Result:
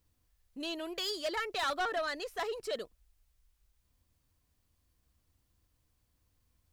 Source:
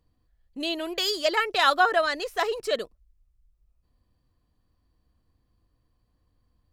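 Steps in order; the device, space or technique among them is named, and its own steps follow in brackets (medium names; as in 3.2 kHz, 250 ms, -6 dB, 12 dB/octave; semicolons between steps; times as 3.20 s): open-reel tape (saturation -20.5 dBFS, distortion -10 dB; peaking EQ 80 Hz +4.5 dB 0.88 oct; white noise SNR 41 dB); trim -7.5 dB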